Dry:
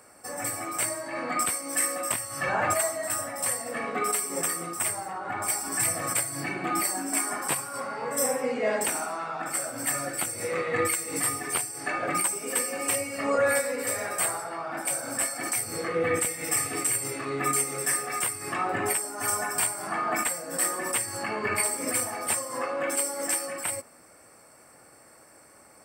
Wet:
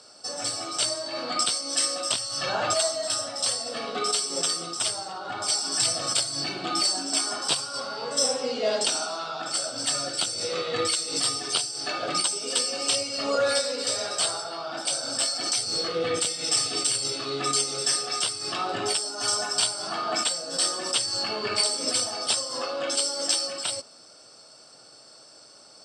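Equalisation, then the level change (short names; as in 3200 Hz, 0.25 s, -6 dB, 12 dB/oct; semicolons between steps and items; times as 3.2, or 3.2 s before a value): speaker cabinet 120–6500 Hz, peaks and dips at 120 Hz +4 dB, 420 Hz +3 dB, 640 Hz +5 dB, 1400 Hz +7 dB, 3000 Hz +5 dB, 5100 Hz +4 dB; resonant high shelf 2800 Hz +11 dB, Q 3; -2.5 dB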